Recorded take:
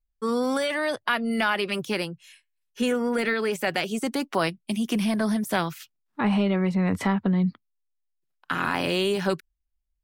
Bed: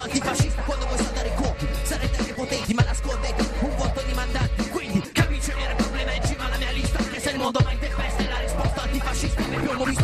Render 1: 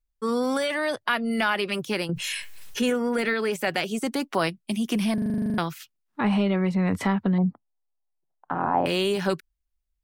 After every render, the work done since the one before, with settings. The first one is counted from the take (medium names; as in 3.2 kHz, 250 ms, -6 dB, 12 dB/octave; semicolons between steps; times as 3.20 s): 2.09–2.90 s: level flattener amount 70%; 5.14 s: stutter in place 0.04 s, 11 plays; 7.38–8.86 s: resonant low-pass 790 Hz, resonance Q 3.3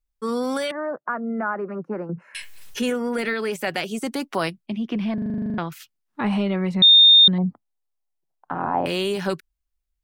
0.71–2.35 s: elliptic band-pass 170–1400 Hz; 4.66–5.72 s: distance through air 300 m; 6.82–7.28 s: bleep 3.65 kHz -8 dBFS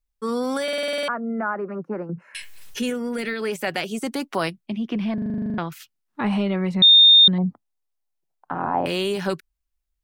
0.63 s: stutter in place 0.05 s, 9 plays; 2.02–3.41 s: dynamic bell 920 Hz, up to -7 dB, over -41 dBFS, Q 0.75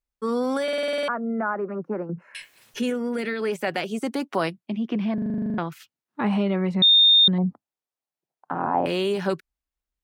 high-pass 300 Hz 6 dB/octave; tilt EQ -2 dB/octave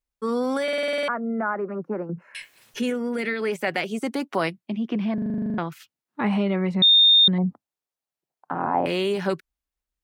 dynamic bell 2.1 kHz, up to +6 dB, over -44 dBFS, Q 4.2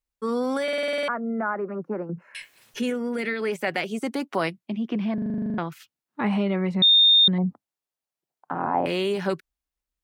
trim -1 dB